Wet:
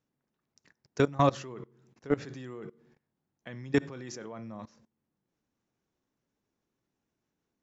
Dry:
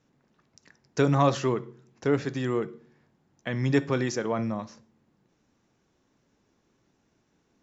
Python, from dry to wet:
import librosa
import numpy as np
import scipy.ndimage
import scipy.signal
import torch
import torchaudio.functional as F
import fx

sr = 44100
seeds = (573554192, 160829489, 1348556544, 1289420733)

y = fx.level_steps(x, sr, step_db=21)